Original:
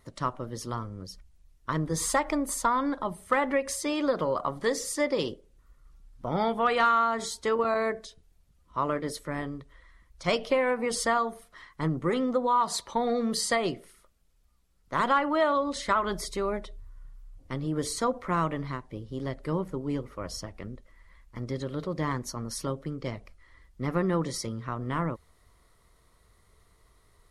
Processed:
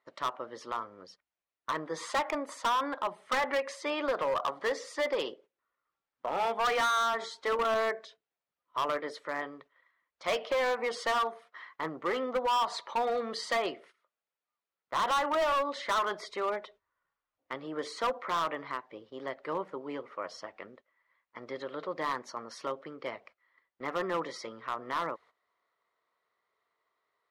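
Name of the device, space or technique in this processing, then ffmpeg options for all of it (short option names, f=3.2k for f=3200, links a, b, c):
walkie-talkie: -af "highpass=590,lowpass=2.8k,asoftclip=type=hard:threshold=-28dB,agate=range=-13dB:threshold=-58dB:ratio=16:detection=peak,volume=3dB"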